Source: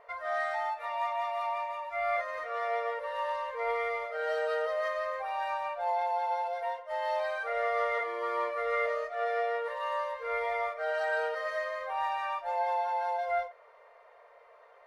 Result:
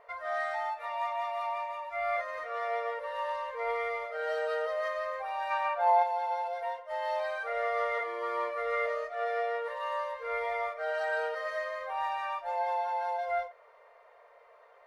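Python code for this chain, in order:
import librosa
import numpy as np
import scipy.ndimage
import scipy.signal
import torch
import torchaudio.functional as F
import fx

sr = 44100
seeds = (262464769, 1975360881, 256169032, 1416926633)

y = fx.peak_eq(x, sr, hz=fx.line((5.5, 2300.0), (6.02, 800.0)), db=8.5, octaves=2.1, at=(5.5, 6.02), fade=0.02)
y = y * 10.0 ** (-1.0 / 20.0)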